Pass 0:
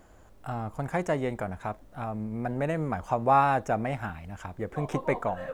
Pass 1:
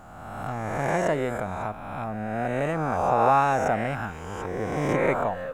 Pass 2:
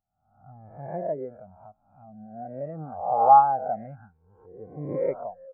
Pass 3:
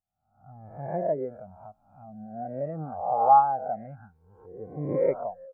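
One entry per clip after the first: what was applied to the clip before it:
spectral swells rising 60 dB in 1.61 s
spectral expander 2.5:1; gain +2.5 dB
AGC gain up to 9 dB; gain -6.5 dB

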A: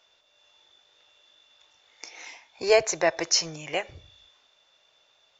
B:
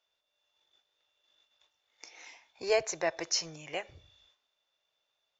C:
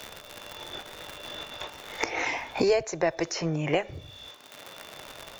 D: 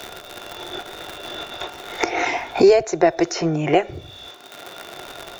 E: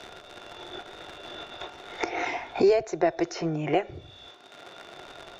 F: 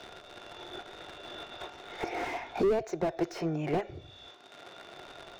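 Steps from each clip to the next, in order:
gate -59 dBFS, range -9 dB; gain -8 dB
low shelf 450 Hz +10.5 dB; crackle 140/s -58 dBFS; three-band squash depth 100%; gain +5.5 dB
small resonant body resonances 370/710/1400/3700 Hz, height 10 dB, ringing for 40 ms; gain +5 dB
air absorption 67 m; gain -7.5 dB
slew limiter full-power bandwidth 42 Hz; gain -3 dB

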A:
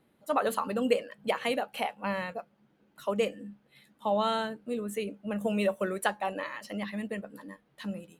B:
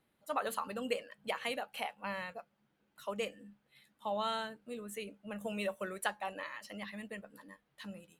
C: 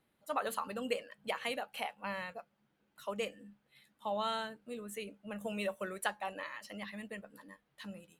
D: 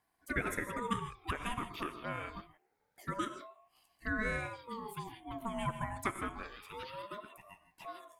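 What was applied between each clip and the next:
bell 280 Hz -7.5 dB 2.9 oct; gain -4 dB
nothing audible
non-linear reverb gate 0.18 s rising, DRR 9 dB; envelope phaser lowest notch 350 Hz, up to 3900 Hz, full sweep at -35.5 dBFS; ring modulator with a swept carrier 670 Hz, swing 35%, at 0.26 Hz; gain +4 dB

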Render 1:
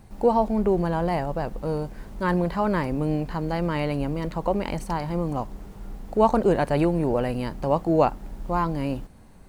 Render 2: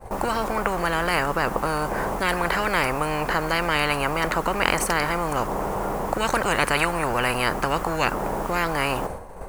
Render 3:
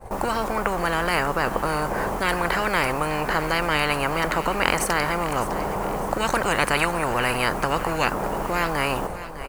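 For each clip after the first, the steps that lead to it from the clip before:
expander -41 dBFS; ten-band EQ 125 Hz -4 dB, 250 Hz -9 dB, 500 Hz +12 dB, 1000 Hz +8 dB, 4000 Hz -8 dB; spectral compressor 10:1; gain -4 dB
feedback echo 0.605 s, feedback 45%, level -14 dB

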